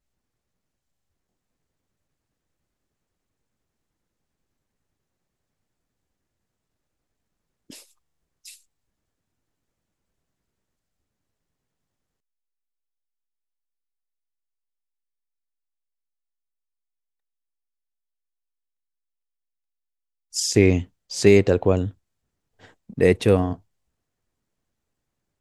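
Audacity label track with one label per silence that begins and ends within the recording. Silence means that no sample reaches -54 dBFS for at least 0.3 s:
7.930000	8.450000	silence
8.620000	20.320000	silence
21.950000	22.590000	silence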